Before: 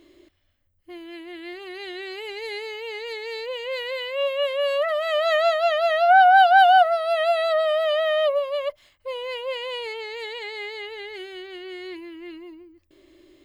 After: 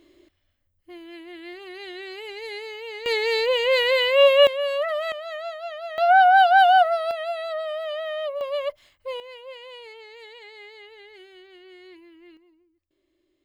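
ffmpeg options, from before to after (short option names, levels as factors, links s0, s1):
-af "asetnsamples=n=441:p=0,asendcmd='3.06 volume volume 9.5dB;4.47 volume volume -2dB;5.12 volume volume -13dB;5.98 volume volume -1dB;7.11 volume volume -8dB;8.41 volume volume -0.5dB;9.2 volume volume -11dB;12.37 volume volume -18dB',volume=0.75"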